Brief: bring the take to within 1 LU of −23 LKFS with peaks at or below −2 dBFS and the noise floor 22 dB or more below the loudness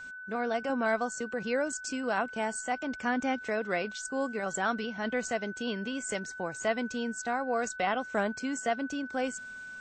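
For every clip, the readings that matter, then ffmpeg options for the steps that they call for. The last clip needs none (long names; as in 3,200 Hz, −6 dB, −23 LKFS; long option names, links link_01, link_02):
interfering tone 1,500 Hz; level of the tone −41 dBFS; integrated loudness −32.5 LKFS; sample peak −17.0 dBFS; target loudness −23.0 LKFS
→ -af "bandreject=frequency=1500:width=30"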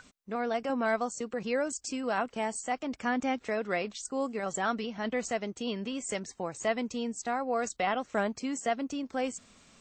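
interfering tone none found; integrated loudness −32.5 LKFS; sample peak −17.5 dBFS; target loudness −23.0 LKFS
→ -af "volume=9.5dB"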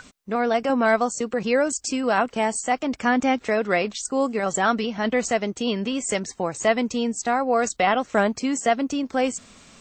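integrated loudness −23.0 LKFS; sample peak −8.0 dBFS; background noise floor −53 dBFS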